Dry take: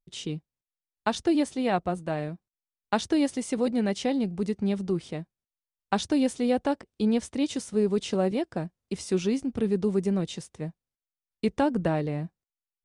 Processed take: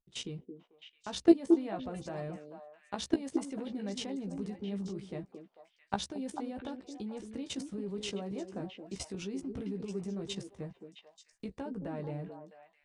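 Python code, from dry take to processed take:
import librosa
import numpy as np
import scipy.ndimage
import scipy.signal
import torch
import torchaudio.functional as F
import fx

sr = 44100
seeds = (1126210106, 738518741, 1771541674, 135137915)

p1 = fx.recorder_agc(x, sr, target_db=-17.5, rise_db_per_s=5.8, max_gain_db=30)
p2 = fx.high_shelf(p1, sr, hz=2400.0, db=-6.0)
p3 = fx.level_steps(p2, sr, step_db=21)
p4 = fx.doubler(p3, sr, ms=15.0, db=-6)
p5 = p4 + fx.echo_stepped(p4, sr, ms=221, hz=330.0, octaves=1.4, feedback_pct=70, wet_db=-3, dry=0)
y = p5 * librosa.db_to_amplitude(2.5)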